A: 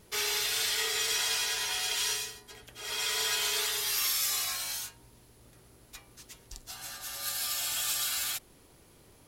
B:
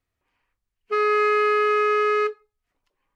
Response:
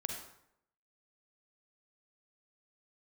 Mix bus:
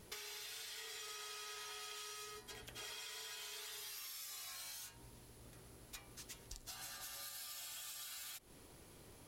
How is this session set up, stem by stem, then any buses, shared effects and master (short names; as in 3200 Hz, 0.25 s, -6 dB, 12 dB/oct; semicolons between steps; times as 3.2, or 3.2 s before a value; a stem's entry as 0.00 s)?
-1.5 dB, 0.00 s, no send, compressor, threshold -37 dBFS, peak gain reduction 10.5 dB
-18.0 dB, 0.10 s, no send, soft clip -24.5 dBFS, distortion -11 dB; band-pass 1500 Hz, Q 0.58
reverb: off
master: compressor 6:1, threshold -47 dBFS, peak gain reduction 10 dB